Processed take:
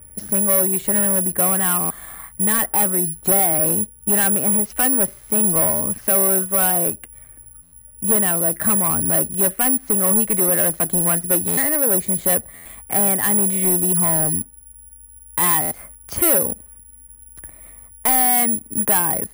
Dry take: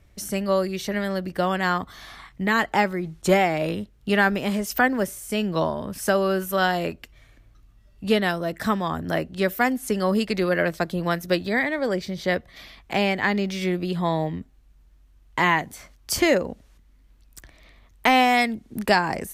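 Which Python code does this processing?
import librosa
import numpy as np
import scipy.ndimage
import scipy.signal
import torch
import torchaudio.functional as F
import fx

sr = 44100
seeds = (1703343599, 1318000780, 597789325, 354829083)

p1 = scipy.signal.sosfilt(scipy.signal.butter(2, 1800.0, 'lowpass', fs=sr, output='sos'), x)
p2 = fx.rider(p1, sr, range_db=4, speed_s=0.5)
p3 = p1 + (p2 * librosa.db_to_amplitude(3.0))
p4 = 10.0 ** (-15.0 / 20.0) * np.tanh(p3 / 10.0 ** (-15.0 / 20.0))
p5 = (np.kron(p4[::4], np.eye(4)[0]) * 4)[:len(p4)]
p6 = fx.buffer_glitch(p5, sr, at_s=(1.8, 7.62, 11.47, 12.55, 15.61), block=512, repeats=8)
y = p6 * librosa.db_to_amplitude(-3.5)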